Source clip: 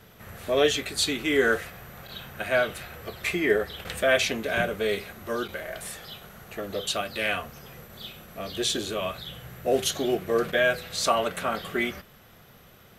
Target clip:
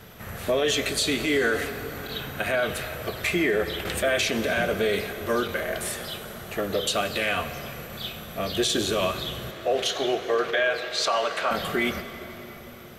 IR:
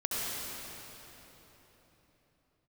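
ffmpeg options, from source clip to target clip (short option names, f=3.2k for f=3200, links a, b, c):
-filter_complex "[0:a]asettb=1/sr,asplit=3[a][b][c];[a]atrim=end=9.514[d];[b]atrim=start=9.51:end=11.51,asetpts=PTS-STARTPTS,afade=t=in:d=0.004:c=qsin,afade=t=out:st=1.996:d=0.004:c=qsin,acrossover=split=410 5600:gain=0.126 1 0.158[e][f][g];[e][f][g]amix=inputs=3:normalize=0[h];[c]atrim=start=11.506[i];[d][h]acrossfade=d=0.004:c1=hsin:c2=qsin[j];[j][i]acrossfade=d=0.004:c1=qsin:c2=hsin,alimiter=limit=-21dB:level=0:latency=1:release=61,asplit=2[k][l];[1:a]atrim=start_sample=2205[m];[l][m]afir=irnorm=-1:irlink=0,volume=-16.5dB[n];[k][n]amix=inputs=2:normalize=0,volume=5dB"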